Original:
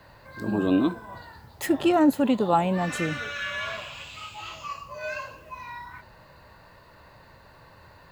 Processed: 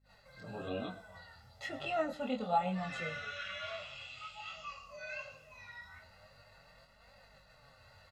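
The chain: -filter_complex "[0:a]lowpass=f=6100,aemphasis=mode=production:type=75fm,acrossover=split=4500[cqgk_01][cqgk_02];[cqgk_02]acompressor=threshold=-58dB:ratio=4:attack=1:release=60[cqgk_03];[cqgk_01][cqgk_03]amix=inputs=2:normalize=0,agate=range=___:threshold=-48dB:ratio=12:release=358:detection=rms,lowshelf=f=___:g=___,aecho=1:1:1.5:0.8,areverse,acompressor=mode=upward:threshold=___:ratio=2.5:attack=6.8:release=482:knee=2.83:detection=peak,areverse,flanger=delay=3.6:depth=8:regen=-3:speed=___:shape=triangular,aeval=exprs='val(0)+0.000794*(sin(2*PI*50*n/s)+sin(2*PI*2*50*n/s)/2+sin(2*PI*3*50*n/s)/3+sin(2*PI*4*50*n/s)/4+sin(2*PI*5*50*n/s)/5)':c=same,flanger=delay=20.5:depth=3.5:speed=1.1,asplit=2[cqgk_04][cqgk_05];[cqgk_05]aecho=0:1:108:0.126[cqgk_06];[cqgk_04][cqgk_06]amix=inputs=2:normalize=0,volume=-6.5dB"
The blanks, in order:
-30dB, 230, -3.5, -41dB, 0.42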